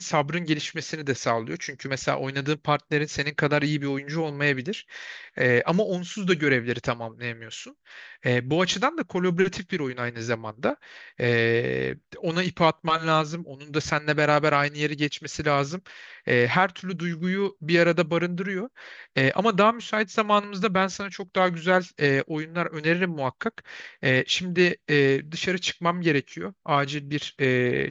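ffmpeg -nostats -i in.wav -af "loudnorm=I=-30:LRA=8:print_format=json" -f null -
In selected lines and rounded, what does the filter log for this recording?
"input_i" : "-24.8",
"input_tp" : "-4.8",
"input_lra" : "2.5",
"input_thresh" : "-35.1",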